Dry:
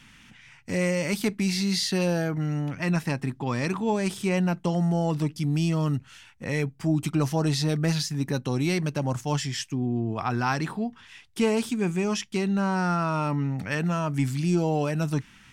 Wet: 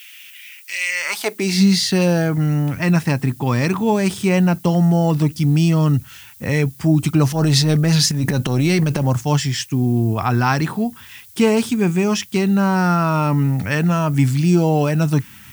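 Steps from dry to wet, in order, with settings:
high-pass filter sweep 2,600 Hz → 82 Hz, 0:00.86–0:01.84
0:07.28–0:09.06: transient designer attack −9 dB, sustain +10 dB
background noise violet −52 dBFS
level +7.5 dB

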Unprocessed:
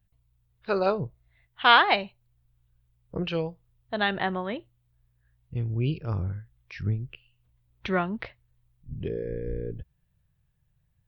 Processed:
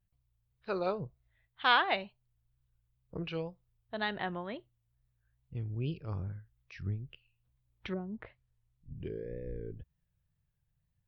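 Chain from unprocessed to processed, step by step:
tape wow and flutter 89 cents
0:07.92–0:08.94: treble cut that deepens with the level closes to 390 Hz, closed at −24.5 dBFS
level −8.5 dB

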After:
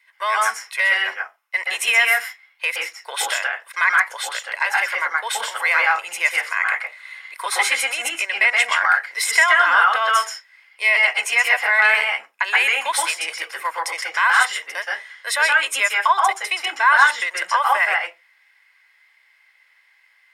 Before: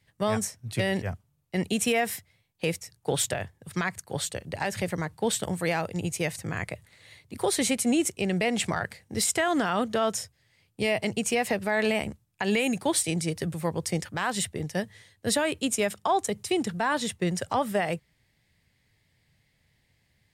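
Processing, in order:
high-pass filter 1,000 Hz 24 dB per octave
convolution reverb RT60 0.20 s, pre-delay 118 ms, DRR −0.5 dB
level +4 dB

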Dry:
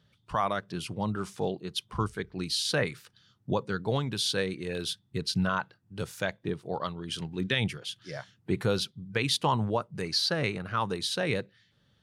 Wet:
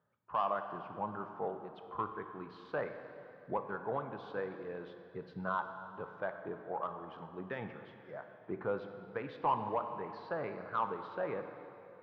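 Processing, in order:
low-pass filter 1,100 Hz 24 dB per octave
first difference
soft clipping −38 dBFS, distortion −22 dB
dense smooth reverb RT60 2.9 s, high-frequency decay 0.85×, DRR 6.5 dB
level +16.5 dB

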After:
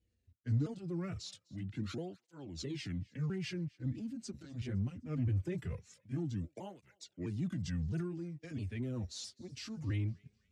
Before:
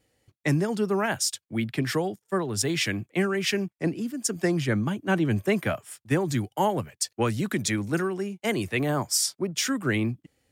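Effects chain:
pitch shifter swept by a sawtooth −5 semitones, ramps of 660 ms
high-pass filter 55 Hz 6 dB per octave
guitar amp tone stack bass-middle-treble 10-0-1
transient designer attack −5 dB, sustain +5 dB
in parallel at −8.5 dB: asymmetric clip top −47.5 dBFS, bottom −35.5 dBFS
on the sum: high-frequency loss of the air 79 metres
on a send: feedback echo with a high-pass in the loop 255 ms, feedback 44%, high-pass 850 Hz, level −24 dB
on the sum: through-zero flanger with one copy inverted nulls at 0.22 Hz, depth 7.3 ms
level +7.5 dB

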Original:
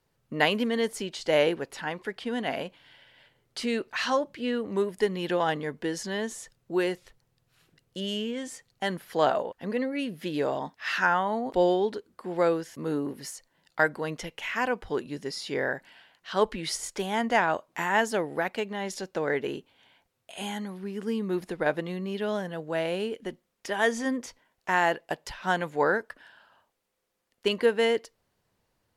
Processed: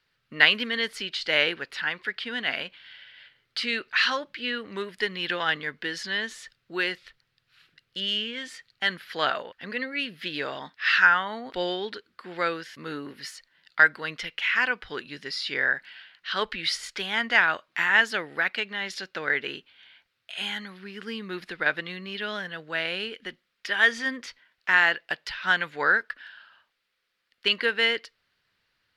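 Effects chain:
flat-topped bell 2,500 Hz +15.5 dB 2.3 octaves
level −7 dB

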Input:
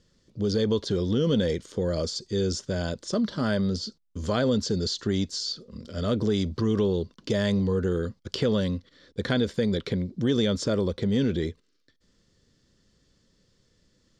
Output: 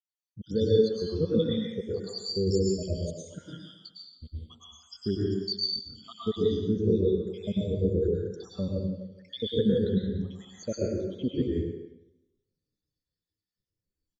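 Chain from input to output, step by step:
time-frequency cells dropped at random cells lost 81%
high-shelf EQ 2,900 Hz +7.5 dB
far-end echo of a speakerphone 170 ms, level −7 dB
dense smooth reverb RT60 1.3 s, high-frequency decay 0.9×, pre-delay 90 ms, DRR −4 dB
every bin expanded away from the loudest bin 1.5 to 1

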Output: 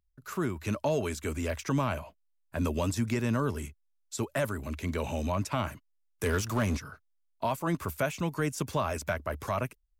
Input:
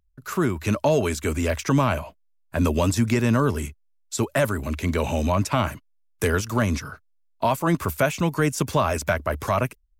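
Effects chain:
0:06.26–0:06.77: power curve on the samples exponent 0.7
level −8.5 dB

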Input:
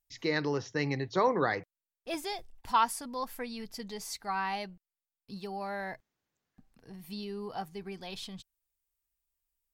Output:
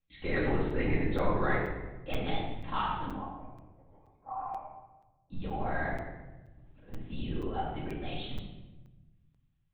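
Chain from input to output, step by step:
0:03.13–0:05.32: formant resonators in series a
linear-prediction vocoder at 8 kHz whisper
brickwall limiter −23.5 dBFS, peak gain reduction 9.5 dB
rectangular room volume 630 cubic metres, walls mixed, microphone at 2.2 metres
regular buffer underruns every 0.48 s, samples 256, zero, from 0:00.70
level −2 dB

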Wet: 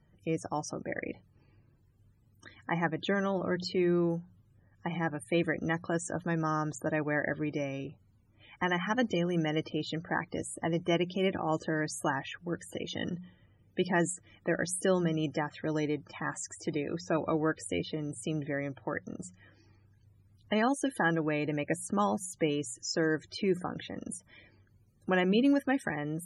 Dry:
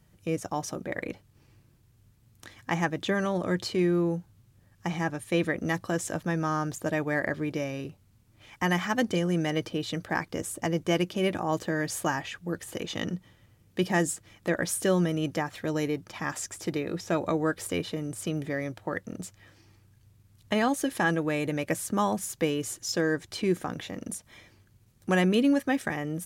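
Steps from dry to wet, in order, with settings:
spectral peaks only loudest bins 64
mains-hum notches 60/120/180 Hz
level −2.5 dB

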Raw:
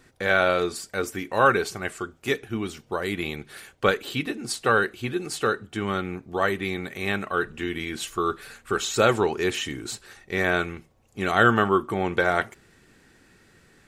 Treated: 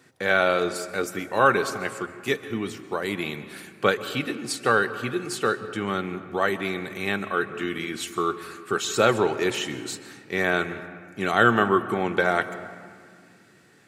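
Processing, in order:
high-pass filter 110 Hz 24 dB per octave
on a send: convolution reverb RT60 2.1 s, pre-delay 123 ms, DRR 12.5 dB

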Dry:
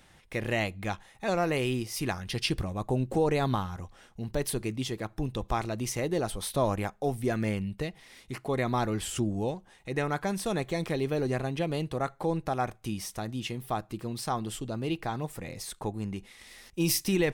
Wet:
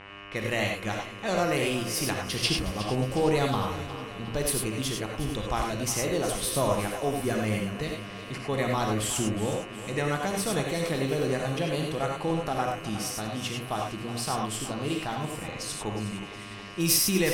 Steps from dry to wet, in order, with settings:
hum with harmonics 100 Hz, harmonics 30, −46 dBFS −1 dB per octave
high-shelf EQ 3,600 Hz +7 dB
low-pass that shuts in the quiet parts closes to 2,600 Hz, open at −28 dBFS
echo with a time of its own for lows and highs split 300 Hz, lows 504 ms, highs 363 ms, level −13 dB
reverb whose tail is shaped and stops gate 120 ms rising, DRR 1.5 dB
level −1 dB

